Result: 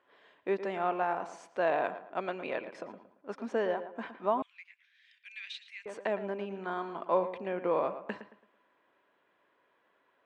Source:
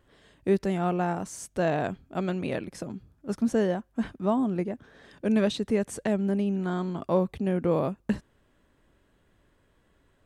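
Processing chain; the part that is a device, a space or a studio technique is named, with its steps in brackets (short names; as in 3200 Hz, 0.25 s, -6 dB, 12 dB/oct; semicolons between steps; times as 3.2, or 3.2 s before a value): tin-can telephone (BPF 530–2700 Hz; small resonant body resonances 1000/2400 Hz, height 7 dB); tape echo 0.113 s, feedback 37%, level -10 dB, low-pass 2400 Hz; 4.42–5.86 Chebyshev high-pass 2100 Hz, order 4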